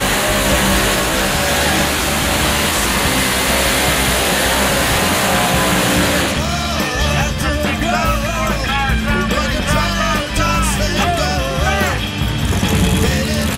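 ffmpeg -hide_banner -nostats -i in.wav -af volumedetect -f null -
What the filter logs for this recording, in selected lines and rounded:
mean_volume: -15.6 dB
max_volume: -4.4 dB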